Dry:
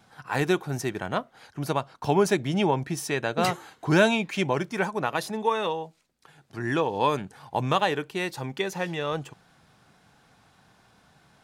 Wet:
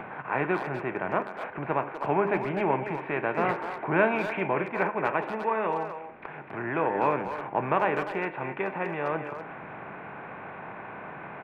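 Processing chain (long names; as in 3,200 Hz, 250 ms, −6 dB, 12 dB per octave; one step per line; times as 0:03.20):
compressor on every frequency bin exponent 0.6
elliptic low-pass filter 2,400 Hz, stop band 60 dB
low-shelf EQ 190 Hz −7.5 dB
in parallel at 0 dB: downward compressor 6 to 1, threshold −37 dBFS, peak gain reduction 21 dB
on the sum: hum removal 101.7 Hz, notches 36
upward compression, threshold −24 dBFS
tuned comb filter 100 Hz, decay 1.1 s, harmonics all, mix 50%
far-end echo of a speakerphone 250 ms, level −7 dB
multiband upward and downward expander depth 40%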